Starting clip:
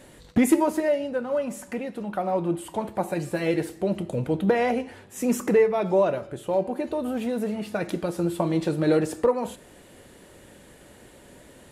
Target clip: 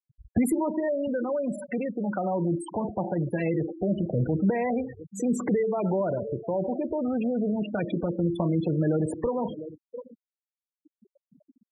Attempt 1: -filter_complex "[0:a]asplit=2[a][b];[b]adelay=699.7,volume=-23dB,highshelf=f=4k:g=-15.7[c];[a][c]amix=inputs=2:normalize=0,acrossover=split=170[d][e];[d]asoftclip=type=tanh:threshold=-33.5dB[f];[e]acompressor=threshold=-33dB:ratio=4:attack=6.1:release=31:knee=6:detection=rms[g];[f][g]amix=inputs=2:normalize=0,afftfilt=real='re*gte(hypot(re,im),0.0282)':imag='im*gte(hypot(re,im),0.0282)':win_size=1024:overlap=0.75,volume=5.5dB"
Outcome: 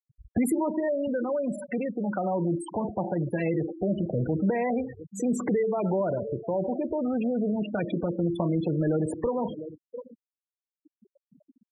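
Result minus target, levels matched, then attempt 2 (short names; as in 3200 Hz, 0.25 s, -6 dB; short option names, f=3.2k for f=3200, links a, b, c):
soft clip: distortion +10 dB
-filter_complex "[0:a]asplit=2[a][b];[b]adelay=699.7,volume=-23dB,highshelf=f=4k:g=-15.7[c];[a][c]amix=inputs=2:normalize=0,acrossover=split=170[d][e];[d]asoftclip=type=tanh:threshold=-25dB[f];[e]acompressor=threshold=-33dB:ratio=4:attack=6.1:release=31:knee=6:detection=rms[g];[f][g]amix=inputs=2:normalize=0,afftfilt=real='re*gte(hypot(re,im),0.0282)':imag='im*gte(hypot(re,im),0.0282)':win_size=1024:overlap=0.75,volume=5.5dB"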